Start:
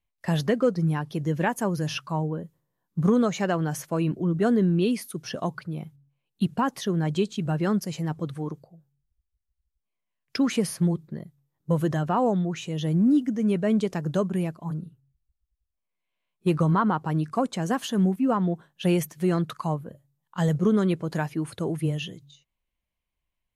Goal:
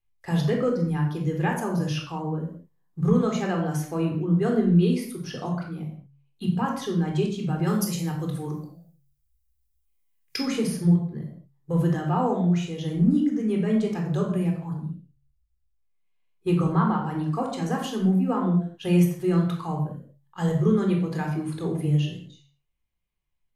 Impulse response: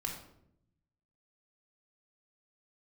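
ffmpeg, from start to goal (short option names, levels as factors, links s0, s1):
-filter_complex "[0:a]asplit=3[s0][s1][s2];[s0]afade=t=out:st=7.66:d=0.02[s3];[s1]aemphasis=mode=production:type=75kf,afade=t=in:st=7.66:d=0.02,afade=t=out:st=10.39:d=0.02[s4];[s2]afade=t=in:st=10.39:d=0.02[s5];[s3][s4][s5]amix=inputs=3:normalize=0[s6];[1:a]atrim=start_sample=2205,afade=t=out:st=0.28:d=0.01,atrim=end_sample=12789[s7];[s6][s7]afir=irnorm=-1:irlink=0,volume=0.75"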